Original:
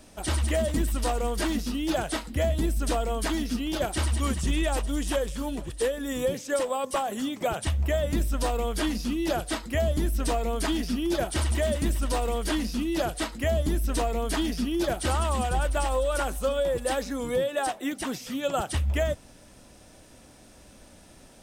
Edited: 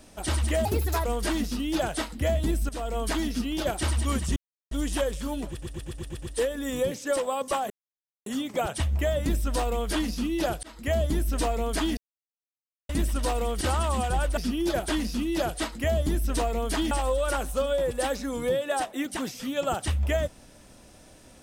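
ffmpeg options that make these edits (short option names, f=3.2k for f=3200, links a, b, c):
-filter_complex "[0:a]asplit=20[a][b][c][d][e][f][g][h][i][j][k][l][m][n][o][p][q][r][s][t];[a]atrim=end=0.654[u];[b]atrim=start=0.65:end=1.2,asetpts=PTS-STARTPTS,asetrate=60417,aresample=44100,atrim=end_sample=17704,asetpts=PTS-STARTPTS[v];[c]atrim=start=1.196:end=2.84,asetpts=PTS-STARTPTS,afade=t=out:st=1.64:d=0.004:c=hsin:silence=0.188365[w];[d]atrim=start=2.84:end=4.51,asetpts=PTS-STARTPTS,afade=t=in:d=0.31:silence=0.188365,afade=t=out:st=1.666:d=0.004:c=hsin[x];[e]atrim=start=4.51:end=4.86,asetpts=PTS-STARTPTS,volume=0[y];[f]atrim=start=4.86:end=5.772,asetpts=PTS-STARTPTS,afade=t=in:d=0.004:c=hsin[z];[g]atrim=start=5.648:end=5.772[aa];[h]atrim=start=5.648:end=5.772[ab];[i]atrim=start=5.648:end=5.772[ac];[j]atrim=start=5.648:end=5.772[ad];[k]atrim=start=5.648:end=5.772[ae];[l]atrim=start=5.648:end=7.13,asetpts=PTS-STARTPTS,afade=t=out:st=1.478:d=0.004:c=hsin,apad=pad_dur=0.56[af];[m]atrim=start=7.13:end=9.5,asetpts=PTS-STARTPTS,afade=t=in:d=0.004:c=hsin,afade=t=out:st=2.366:d=0.004:c=hsin[ag];[n]atrim=start=9.5:end=10.84,asetpts=PTS-STARTPTS,afade=t=in:d=0.28,afade=t=out:st=1.336:d=0.004:c=hsin[ah];[o]atrim=start=10.84:end=11.76,asetpts=PTS-STARTPTS,volume=0[ai];[p]atrim=start=11.76:end=12.482,asetpts=PTS-STARTPTS,afade=t=in:d=0.004:c=hsin[aj];[q]atrim=start=15.018:end=15.782[ak];[r]atrim=start=14.508:end=15.022[al];[s]atrim=start=12.478:end=14.512[am];[t]atrim=start=15.778[an];[u][v]acrossfade=d=0.004:c1=hsin:c2=hsin[ao];[w][x][y][z]concat=n=4:v=0:a=1[ap];[ao][ap]acrossfade=d=0.004:c1=hsin:c2=hsin[aq];[aq][aa]acrossfade=d=0.004:c1=hsin:c2=hsin[ar];[ar][ab]acrossfade=d=0.004:c1=hsin:c2=hsin[as];[as][ac]acrossfade=d=0.004:c1=hsin:c2=hsin[at];[at][ad]acrossfade=d=0.004:c1=hsin:c2=hsin[au];[au][ae]acrossfade=d=0.004:c1=hsin:c2=hsin[av];[af][ag][ah][ai][aj]concat=n=5:v=0:a=1[aw];[av][aw]acrossfade=d=0.004:c1=hsin:c2=hsin[ax];[ax][ak]acrossfade=d=0.004:c1=hsin:c2=hsin[ay];[ay][al]acrossfade=d=0.004:c1=hsin:c2=hsin[az];[az][am]acrossfade=d=0.004:c1=hsin:c2=hsin[ba];[ba][an]acrossfade=d=0.004:c1=hsin:c2=hsin"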